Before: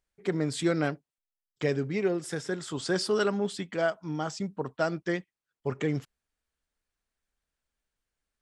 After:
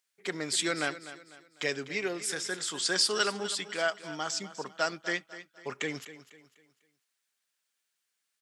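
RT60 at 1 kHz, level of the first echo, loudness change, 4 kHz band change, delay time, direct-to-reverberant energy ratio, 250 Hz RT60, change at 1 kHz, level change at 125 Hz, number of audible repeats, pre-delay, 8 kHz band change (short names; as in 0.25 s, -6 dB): none, -14.5 dB, -0.5 dB, +8.0 dB, 0.249 s, none, none, -0.5 dB, -13.5 dB, 3, none, +9.0 dB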